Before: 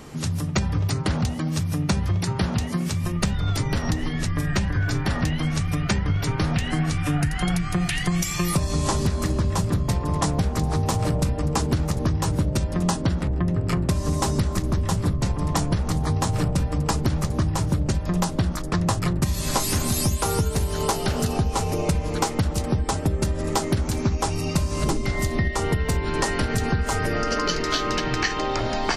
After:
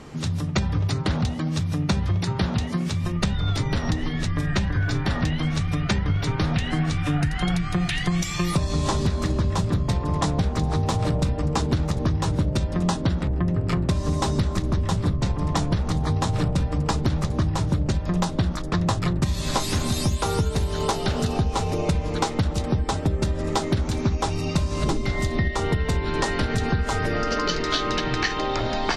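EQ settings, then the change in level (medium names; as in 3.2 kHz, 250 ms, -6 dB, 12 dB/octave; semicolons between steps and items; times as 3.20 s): dynamic bell 3.7 kHz, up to +6 dB, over -52 dBFS, Q 5.2; distance through air 57 m; 0.0 dB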